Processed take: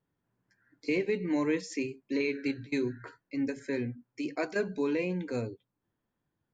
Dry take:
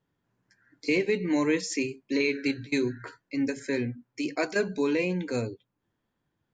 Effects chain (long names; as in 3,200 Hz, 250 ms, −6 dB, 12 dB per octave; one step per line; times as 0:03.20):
high-shelf EQ 3,100 Hz −7.5 dB
level −3.5 dB